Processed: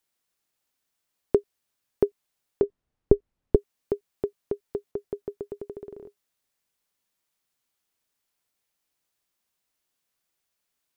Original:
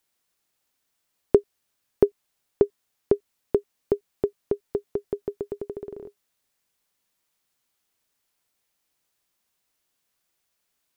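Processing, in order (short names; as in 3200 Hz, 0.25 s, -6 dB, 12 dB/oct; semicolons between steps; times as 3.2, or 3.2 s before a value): 2.63–3.56 tilt -4.5 dB/oct; 4.91–5.55 mismatched tape noise reduction decoder only; gain -4 dB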